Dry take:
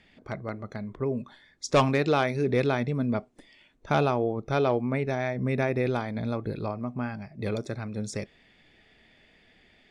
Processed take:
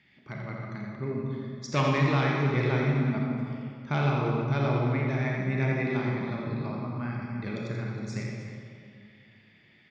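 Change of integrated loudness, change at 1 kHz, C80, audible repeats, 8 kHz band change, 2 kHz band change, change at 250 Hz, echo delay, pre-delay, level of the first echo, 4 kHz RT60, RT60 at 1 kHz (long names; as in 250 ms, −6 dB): −0.5 dB, −2.5 dB, 0.0 dB, 2, can't be measured, +1.0 dB, 0.0 dB, 84 ms, 28 ms, −5.5 dB, 1.5 s, 2.3 s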